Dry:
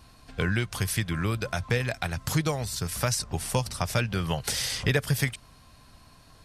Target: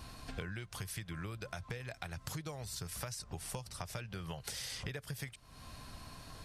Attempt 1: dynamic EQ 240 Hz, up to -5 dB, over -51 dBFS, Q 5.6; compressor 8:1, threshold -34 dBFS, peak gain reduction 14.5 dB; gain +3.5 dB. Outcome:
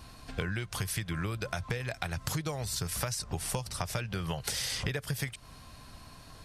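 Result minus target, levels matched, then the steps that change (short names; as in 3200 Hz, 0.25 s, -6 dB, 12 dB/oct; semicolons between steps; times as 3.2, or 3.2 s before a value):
compressor: peak gain reduction -9 dB
change: compressor 8:1, threshold -44 dBFS, peak gain reduction 23.5 dB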